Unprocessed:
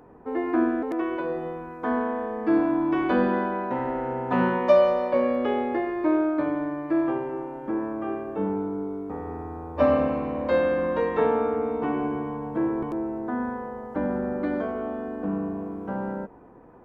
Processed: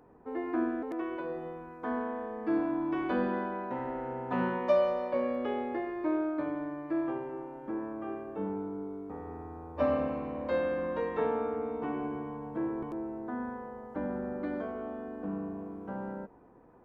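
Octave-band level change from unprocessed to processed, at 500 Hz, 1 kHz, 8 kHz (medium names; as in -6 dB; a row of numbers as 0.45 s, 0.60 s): -8.0 dB, -8.0 dB, no reading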